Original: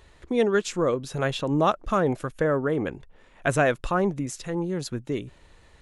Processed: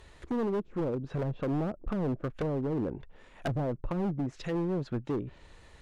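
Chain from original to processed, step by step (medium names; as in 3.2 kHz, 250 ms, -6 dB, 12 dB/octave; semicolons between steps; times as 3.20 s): low-pass that closes with the level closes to 320 Hz, closed at -21.5 dBFS; hard clipper -27 dBFS, distortion -9 dB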